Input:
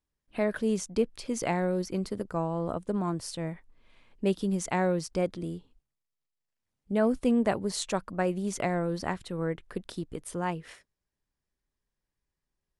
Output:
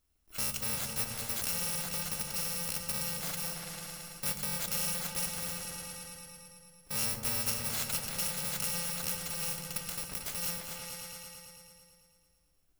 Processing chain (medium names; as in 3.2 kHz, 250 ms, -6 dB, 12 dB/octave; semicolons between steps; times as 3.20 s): bit-reversed sample order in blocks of 128 samples; feedback comb 73 Hz, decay 0.36 s, harmonics all, mix 50%; delay with an opening low-pass 111 ms, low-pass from 200 Hz, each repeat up 2 oct, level -3 dB; spectrum-flattening compressor 2:1